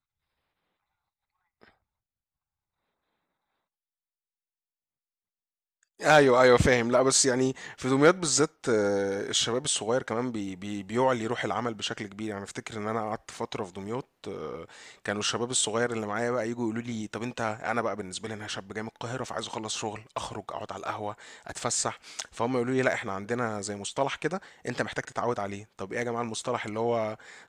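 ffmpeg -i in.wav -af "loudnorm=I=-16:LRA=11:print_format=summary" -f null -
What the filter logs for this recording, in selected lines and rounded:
Input Integrated:    -28.6 LUFS
Input True Peak:      -7.3 dBTP
Input LRA:             9.8 LU
Input Threshold:     -38.9 LUFS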